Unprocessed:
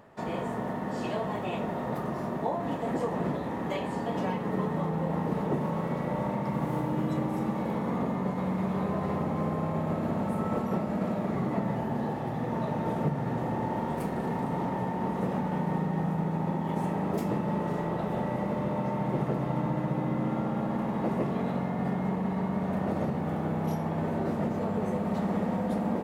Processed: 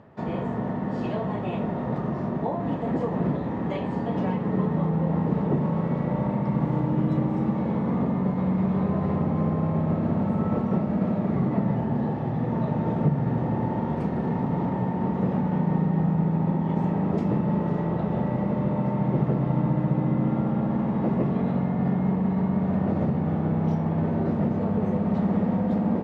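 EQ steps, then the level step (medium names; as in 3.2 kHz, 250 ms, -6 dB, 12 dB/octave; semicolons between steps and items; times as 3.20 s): high-pass 62 Hz; distance through air 140 m; bass shelf 280 Hz +10 dB; 0.0 dB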